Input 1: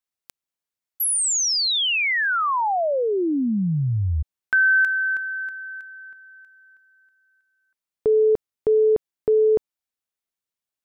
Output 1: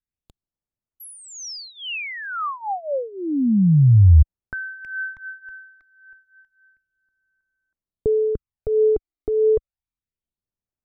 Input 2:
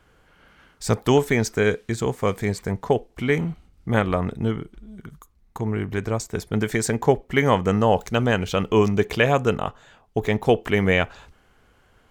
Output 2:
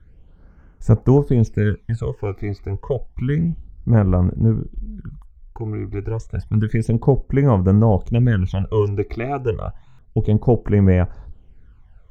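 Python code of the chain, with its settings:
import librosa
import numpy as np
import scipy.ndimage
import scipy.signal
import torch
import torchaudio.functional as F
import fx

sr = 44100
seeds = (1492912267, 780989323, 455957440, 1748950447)

y = fx.phaser_stages(x, sr, stages=12, low_hz=160.0, high_hz=4000.0, hz=0.3, feedback_pct=30)
y = fx.riaa(y, sr, side='playback')
y = fx.buffer_glitch(y, sr, at_s=(9.87,), block=1024, repeats=4)
y = y * librosa.db_to_amplitude(-3.5)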